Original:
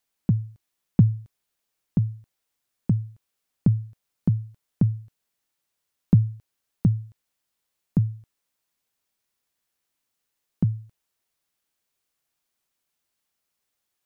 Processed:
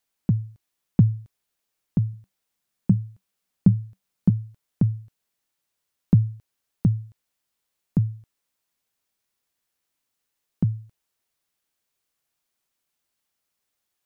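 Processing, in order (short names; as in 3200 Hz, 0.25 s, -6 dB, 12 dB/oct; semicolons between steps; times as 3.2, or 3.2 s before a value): 2.13–4.3 bell 190 Hz +9.5 dB 0.23 oct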